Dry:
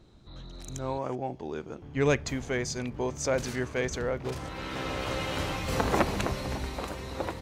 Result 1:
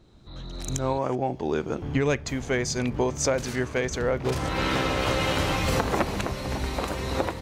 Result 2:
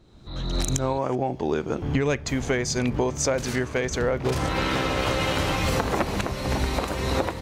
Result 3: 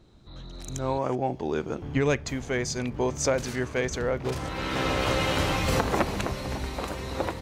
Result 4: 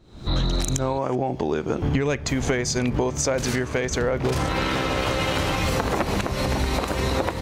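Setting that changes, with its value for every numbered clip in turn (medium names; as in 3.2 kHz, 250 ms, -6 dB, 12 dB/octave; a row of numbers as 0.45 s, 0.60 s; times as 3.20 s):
recorder AGC, rising by: 14 dB/s, 34 dB/s, 5.3 dB/s, 84 dB/s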